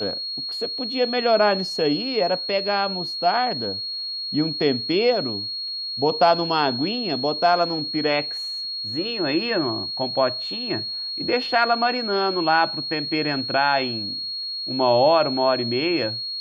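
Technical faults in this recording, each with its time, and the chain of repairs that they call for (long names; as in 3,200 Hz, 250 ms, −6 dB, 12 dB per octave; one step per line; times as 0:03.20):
whistle 4,300 Hz −27 dBFS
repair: notch filter 4,300 Hz, Q 30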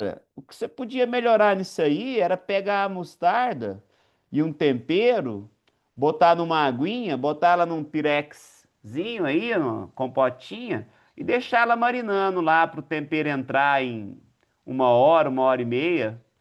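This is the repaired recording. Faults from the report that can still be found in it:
none of them is left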